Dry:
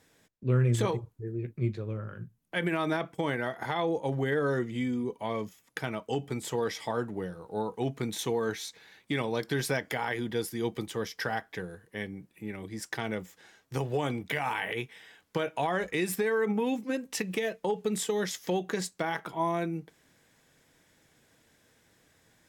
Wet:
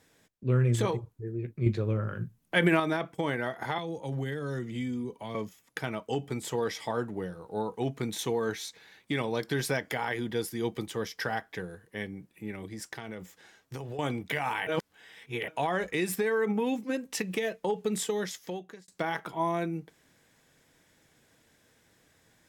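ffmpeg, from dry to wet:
-filter_complex "[0:a]asettb=1/sr,asplit=3[a][b][c];[a]atrim=end=1.664[d];[b]atrim=start=1.66:end=2.8,asetpts=PTS-STARTPTS,afade=t=in:d=0.004:c=qsin,afade=t=out:st=1.136:d=0.004:c=qsin,acontrast=62[e];[c]atrim=start=2.796[f];[d][e]acrossfade=d=0.004:c1=hsin:c2=qsin[g];[g][f]acrossfade=d=0.004:c1=qsin:c2=hsin,asettb=1/sr,asplit=3[h][i][j];[h]atrim=end=3.784[k];[i]atrim=start=3.78:end=5.35,asetpts=PTS-STARTPTS,afade=t=in:d=0.004:c=qsin,afade=t=out:st=1.566:d=0.004:c=qsin,acrossover=split=220|3000[l][m][n];[m]acompressor=threshold=-37dB:ratio=4:attack=3.2:release=140:knee=2.83:detection=peak[o];[l][o][n]amix=inputs=3:normalize=0[p];[j]atrim=start=5.346[q];[k][p]acrossfade=d=0.004:c1=hsin:c2=qsin[r];[r][q]acrossfade=d=0.004:c1=qsin:c2=hsin,asettb=1/sr,asplit=3[s][t][u];[s]atrim=end=12.674[v];[t]atrim=start=12.67:end=13.99,asetpts=PTS-STARTPTS,afade=t=in:d=0.004:c=qsin,afade=t=out:st=1.316:d=0.004:c=qsin,acompressor=threshold=-35dB:ratio=6:attack=3.2:release=140:knee=1:detection=peak[w];[u]atrim=start=13.986[x];[v][w]acrossfade=d=0.004:c1=hsin:c2=qsin[y];[y][x]acrossfade=d=0.004:c1=qsin:c2=hsin,asplit=4[z][aa][ab][ac];[z]atrim=end=14.672[ad];[aa]atrim=start=14.668:end=15.482,asetpts=PTS-STARTPTS,areverse[ae];[ab]atrim=start=15.478:end=18.88,asetpts=PTS-STARTPTS,afade=t=out:st=2.562:d=0.84[af];[ac]atrim=start=18.88,asetpts=PTS-STARTPTS,afade=t=in:d=0.004:c=hsin[ag];[ad][ae]acrossfade=d=0.004:c1=hsin:c2=hsin[ah];[af][ag]concat=n=2:v=0:a=1[ai];[ah][ai]acrossfade=d=0.004:c1=hsin:c2=hsin"

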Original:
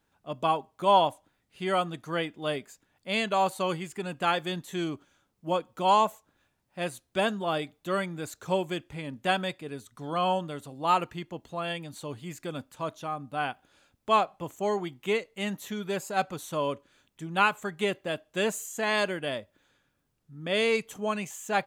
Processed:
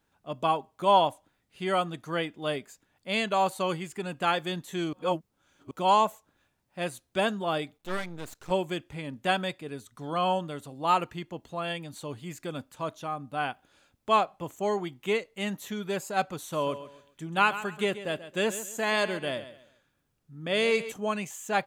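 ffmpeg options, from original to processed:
-filter_complex "[0:a]asettb=1/sr,asplit=3[a][b][c];[a]atrim=end=7.774[d];[b]atrim=start=7.77:end=8.51,asetpts=PTS-STARTPTS,afade=t=in:d=0.004:c=qsin,afade=t=out:st=0.736:d=0.004:c=qsin,aeval=exprs='max(val(0),0)':c=same[e];[c]atrim=start=8.506[f];[d][e]acrossfade=d=0.004:c1=hsin:c2=qsin[g];[g][f]acrossfade=d=0.004:c1=qsin:c2=hsin,asettb=1/sr,asplit=3[h][i][j];[h]atrim=end=16.384[k];[i]atrim=start=16.38:end=20.92,asetpts=PTS-STARTPTS,afade=t=in:d=0.004:c=qsin,afade=t=out:st=4.536:d=0.004:c=qsin,aecho=1:1:135|270|405:0.211|0.0613|0.0178,atrim=end_sample=200214[l];[j]atrim=start=20.916[m];[k][l]acrossfade=d=0.004:c1=hsin:c2=qsin[n];[n][m]acrossfade=d=0.004:c1=qsin:c2=hsin,asplit=3[o][p][q];[o]atrim=end=4.932[r];[p]atrim=start=4.928:end=5.712,asetpts=PTS-STARTPTS,areverse[s];[q]atrim=start=5.708[t];[r][s]acrossfade=d=0.004:c1=hsin:c2=hsin[u];[u][t]acrossfade=d=0.004:c1=hsin:c2=hsin"

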